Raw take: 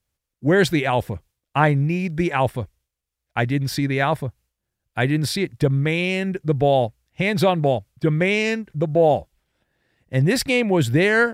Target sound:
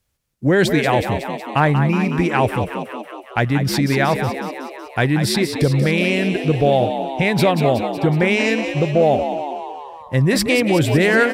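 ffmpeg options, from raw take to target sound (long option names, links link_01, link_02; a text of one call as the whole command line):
ffmpeg -i in.wav -filter_complex "[0:a]acompressor=threshold=-25dB:ratio=1.5,asplit=9[link_01][link_02][link_03][link_04][link_05][link_06][link_07][link_08][link_09];[link_02]adelay=185,afreqshift=66,volume=-8.5dB[link_10];[link_03]adelay=370,afreqshift=132,volume=-12.5dB[link_11];[link_04]adelay=555,afreqshift=198,volume=-16.5dB[link_12];[link_05]adelay=740,afreqshift=264,volume=-20.5dB[link_13];[link_06]adelay=925,afreqshift=330,volume=-24.6dB[link_14];[link_07]adelay=1110,afreqshift=396,volume=-28.6dB[link_15];[link_08]adelay=1295,afreqshift=462,volume=-32.6dB[link_16];[link_09]adelay=1480,afreqshift=528,volume=-36.6dB[link_17];[link_01][link_10][link_11][link_12][link_13][link_14][link_15][link_16][link_17]amix=inputs=9:normalize=0,acontrast=31,volume=1dB" out.wav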